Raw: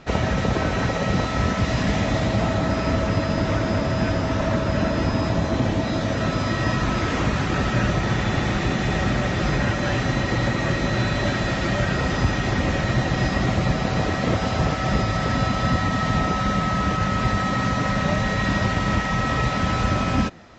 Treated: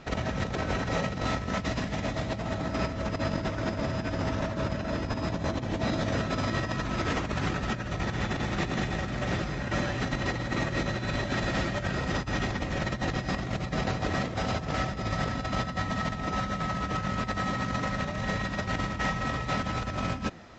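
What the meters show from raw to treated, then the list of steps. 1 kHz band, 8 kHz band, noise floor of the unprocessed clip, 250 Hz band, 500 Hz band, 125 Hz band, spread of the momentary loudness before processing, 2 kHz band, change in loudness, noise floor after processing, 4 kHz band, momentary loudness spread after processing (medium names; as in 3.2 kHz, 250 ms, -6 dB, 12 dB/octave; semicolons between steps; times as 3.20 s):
-7.5 dB, no reading, -25 dBFS, -8.5 dB, -8.0 dB, -9.5 dB, 1 LU, -7.5 dB, -8.5 dB, -36 dBFS, -7.0 dB, 2 LU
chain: compressor with a negative ratio -24 dBFS, ratio -0.5; trim -5.5 dB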